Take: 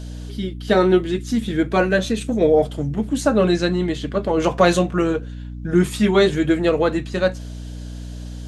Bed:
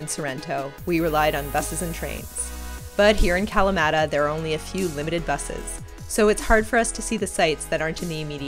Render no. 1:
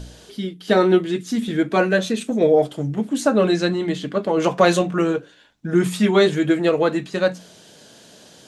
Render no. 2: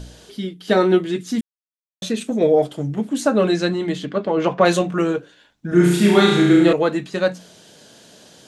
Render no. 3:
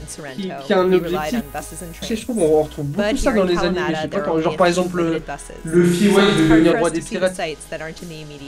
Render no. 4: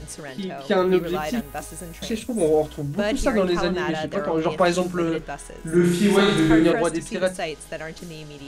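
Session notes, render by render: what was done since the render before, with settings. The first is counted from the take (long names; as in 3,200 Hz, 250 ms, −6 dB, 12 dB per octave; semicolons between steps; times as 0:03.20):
hum removal 60 Hz, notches 5
0:01.41–0:02.02: silence; 0:04.05–0:04.64: low-pass filter 5,800 Hz → 2,800 Hz; 0:05.68–0:06.73: flutter between parallel walls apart 5.9 metres, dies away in 1 s
mix in bed −4.5 dB
level −4 dB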